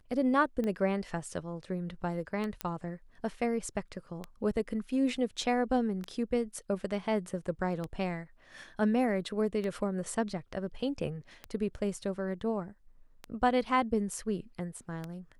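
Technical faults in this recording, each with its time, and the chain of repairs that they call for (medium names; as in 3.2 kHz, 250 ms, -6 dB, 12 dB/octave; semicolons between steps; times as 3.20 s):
tick 33 1/3 rpm -23 dBFS
2.61 s: pop -17 dBFS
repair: de-click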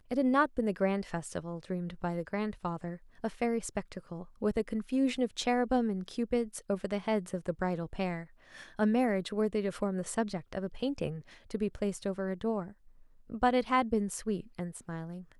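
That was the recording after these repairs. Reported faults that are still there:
nothing left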